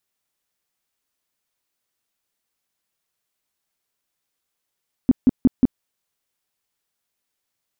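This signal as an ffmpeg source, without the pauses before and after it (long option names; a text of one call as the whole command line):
ffmpeg -f lavfi -i "aevalsrc='0.376*sin(2*PI*255*mod(t,0.18))*lt(mod(t,0.18),6/255)':duration=0.72:sample_rate=44100" out.wav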